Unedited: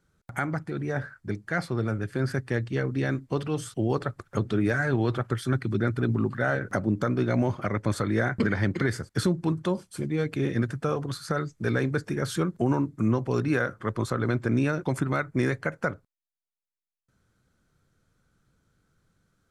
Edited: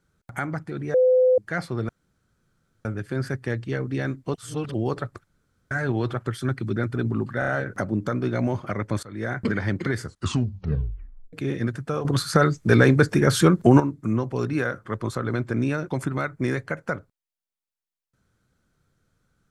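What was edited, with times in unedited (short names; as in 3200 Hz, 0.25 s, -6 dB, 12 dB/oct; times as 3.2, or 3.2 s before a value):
0.94–1.38 bleep 509 Hz -14 dBFS
1.89 insert room tone 0.96 s
3.38–3.78 reverse
4.31–4.75 room tone
6.43 stutter 0.03 s, 4 plays
7.98–8.35 fade in, from -23 dB
8.96 tape stop 1.32 s
11–12.75 gain +10 dB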